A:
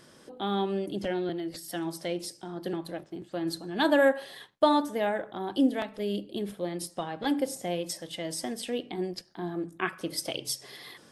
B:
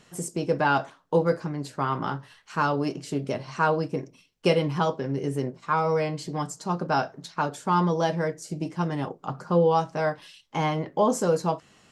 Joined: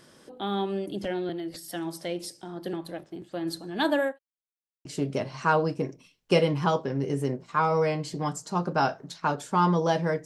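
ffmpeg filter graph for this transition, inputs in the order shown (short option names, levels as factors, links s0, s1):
-filter_complex "[0:a]apad=whole_dur=10.25,atrim=end=10.25,asplit=2[s0][s1];[s0]atrim=end=4.19,asetpts=PTS-STARTPTS,afade=t=out:st=3.77:d=0.42:c=qsin[s2];[s1]atrim=start=4.19:end=4.85,asetpts=PTS-STARTPTS,volume=0[s3];[1:a]atrim=start=2.99:end=8.39,asetpts=PTS-STARTPTS,afade=t=in:d=0.004:c=hsin[s4];[s2][s3][s4]concat=n=3:v=0:a=1"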